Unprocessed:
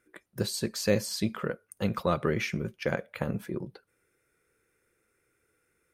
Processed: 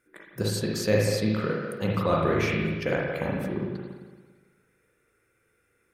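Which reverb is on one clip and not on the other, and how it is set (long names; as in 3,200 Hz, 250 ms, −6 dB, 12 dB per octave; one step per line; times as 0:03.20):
spring reverb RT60 1.4 s, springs 37/56 ms, chirp 50 ms, DRR −3 dB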